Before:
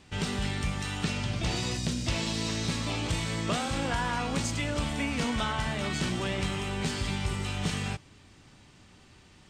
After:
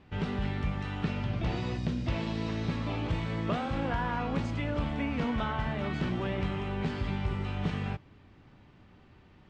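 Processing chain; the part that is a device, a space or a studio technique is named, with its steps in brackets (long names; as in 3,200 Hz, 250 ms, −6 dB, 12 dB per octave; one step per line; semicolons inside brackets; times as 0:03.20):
phone in a pocket (low-pass filter 3,500 Hz 12 dB per octave; high-shelf EQ 2,400 Hz −10.5 dB)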